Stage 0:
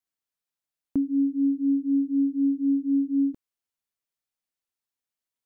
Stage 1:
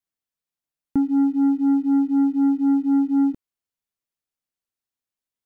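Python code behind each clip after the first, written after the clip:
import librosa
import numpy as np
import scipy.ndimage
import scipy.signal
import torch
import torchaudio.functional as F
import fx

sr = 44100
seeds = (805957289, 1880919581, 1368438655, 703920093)

y = fx.low_shelf(x, sr, hz=400.0, db=5.0)
y = fx.leveller(y, sr, passes=1)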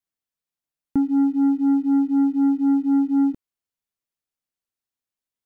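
y = x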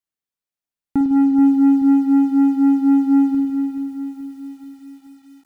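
y = fx.rev_spring(x, sr, rt60_s=1.6, pass_ms=(51,), chirp_ms=25, drr_db=6.0)
y = fx.leveller(y, sr, passes=1)
y = fx.echo_crushed(y, sr, ms=430, feedback_pct=55, bits=8, wet_db=-11)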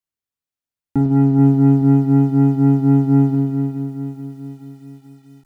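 y = fx.octave_divider(x, sr, octaves=1, level_db=1.0)
y = y * librosa.db_to_amplitude(-1.5)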